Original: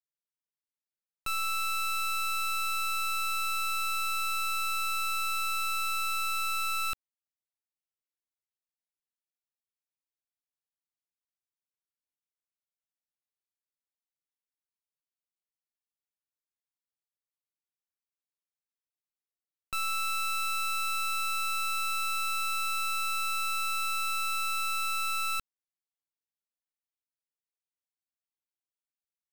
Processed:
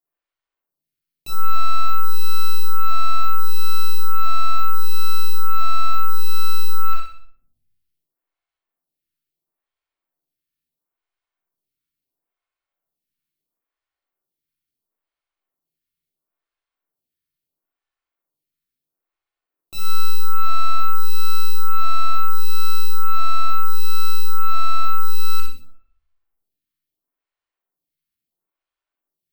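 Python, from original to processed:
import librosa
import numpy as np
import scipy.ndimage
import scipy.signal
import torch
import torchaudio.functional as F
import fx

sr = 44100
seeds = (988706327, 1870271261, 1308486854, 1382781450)

p1 = fx.peak_eq(x, sr, hz=7000.0, db=-8.5, octaves=1.3)
p2 = np.clip(10.0 ** (36.0 / 20.0) * p1, -1.0, 1.0) / 10.0 ** (36.0 / 20.0)
p3 = p2 + fx.echo_feedback(p2, sr, ms=62, feedback_pct=39, wet_db=-4.5, dry=0)
p4 = fx.room_shoebox(p3, sr, seeds[0], volume_m3=910.0, walls='furnished', distance_m=3.3)
p5 = fx.stagger_phaser(p4, sr, hz=0.74)
y = p5 * librosa.db_to_amplitude(8.5)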